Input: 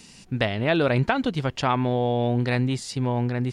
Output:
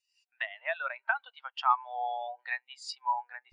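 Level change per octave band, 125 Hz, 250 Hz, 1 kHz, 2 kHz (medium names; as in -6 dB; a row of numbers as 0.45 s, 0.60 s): under -40 dB, under -40 dB, -2.5 dB, -4.0 dB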